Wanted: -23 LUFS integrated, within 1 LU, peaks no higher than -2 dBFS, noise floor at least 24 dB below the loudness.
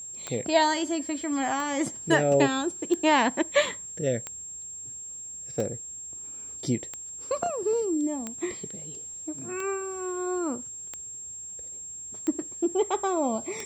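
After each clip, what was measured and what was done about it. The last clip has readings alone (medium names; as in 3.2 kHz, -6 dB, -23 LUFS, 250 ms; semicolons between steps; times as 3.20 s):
clicks found 11; steady tone 7.5 kHz; tone level -37 dBFS; loudness -28.5 LUFS; peak level -8.0 dBFS; loudness target -23.0 LUFS
-> de-click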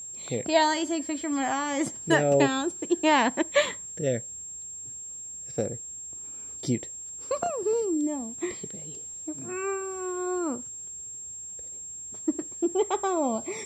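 clicks found 0; steady tone 7.5 kHz; tone level -37 dBFS
-> band-stop 7.5 kHz, Q 30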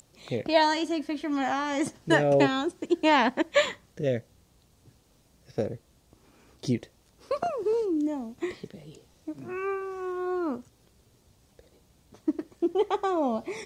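steady tone not found; loudness -28.0 LUFS; peak level -8.0 dBFS; loudness target -23.0 LUFS
-> trim +5 dB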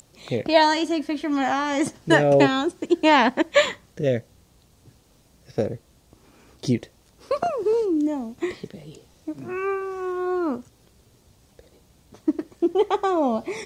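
loudness -23.0 LUFS; peak level -3.0 dBFS; noise floor -58 dBFS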